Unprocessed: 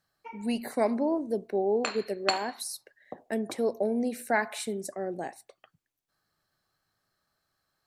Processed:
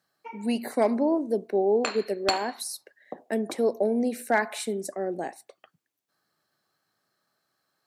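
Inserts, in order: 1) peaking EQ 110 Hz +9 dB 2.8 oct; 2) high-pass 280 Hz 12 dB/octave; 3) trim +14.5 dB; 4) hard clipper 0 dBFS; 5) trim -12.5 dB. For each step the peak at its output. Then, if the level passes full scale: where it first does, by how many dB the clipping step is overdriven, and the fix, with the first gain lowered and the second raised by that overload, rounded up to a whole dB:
-5.0 dBFS, -5.5 dBFS, +9.0 dBFS, 0.0 dBFS, -12.5 dBFS; step 3, 9.0 dB; step 3 +5.5 dB, step 5 -3.5 dB

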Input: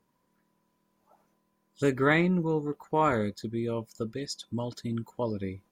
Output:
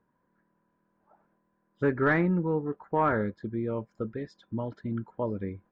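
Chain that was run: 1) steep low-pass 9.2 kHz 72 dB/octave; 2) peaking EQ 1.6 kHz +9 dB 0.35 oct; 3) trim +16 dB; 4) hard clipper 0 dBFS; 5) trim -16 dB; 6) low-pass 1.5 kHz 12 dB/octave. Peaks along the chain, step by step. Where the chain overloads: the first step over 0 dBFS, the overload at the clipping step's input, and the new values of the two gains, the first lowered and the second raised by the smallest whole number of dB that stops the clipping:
-12.0 dBFS, -9.0 dBFS, +7.0 dBFS, 0.0 dBFS, -16.0 dBFS, -15.5 dBFS; step 3, 7.0 dB; step 3 +9 dB, step 5 -9 dB

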